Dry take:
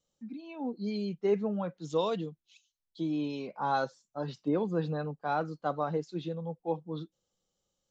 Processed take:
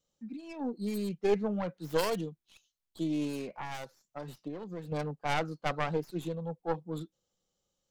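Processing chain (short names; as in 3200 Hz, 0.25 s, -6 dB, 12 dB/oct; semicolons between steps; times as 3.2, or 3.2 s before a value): tracing distortion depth 0.46 ms; 3.47–4.92 compressor 6:1, threshold -38 dBFS, peak gain reduction 13.5 dB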